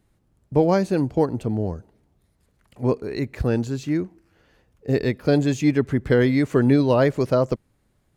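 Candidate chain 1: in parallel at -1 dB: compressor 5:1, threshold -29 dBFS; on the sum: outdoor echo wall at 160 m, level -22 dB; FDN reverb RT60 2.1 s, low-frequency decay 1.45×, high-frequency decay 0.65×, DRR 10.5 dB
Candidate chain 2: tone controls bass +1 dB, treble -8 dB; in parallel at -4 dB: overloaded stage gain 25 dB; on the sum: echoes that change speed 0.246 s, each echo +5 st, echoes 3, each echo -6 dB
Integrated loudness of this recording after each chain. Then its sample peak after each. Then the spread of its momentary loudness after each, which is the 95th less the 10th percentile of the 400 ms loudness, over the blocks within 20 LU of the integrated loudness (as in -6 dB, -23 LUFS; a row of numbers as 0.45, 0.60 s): -19.0, -19.5 LUFS; -4.0, -3.0 dBFS; 17, 11 LU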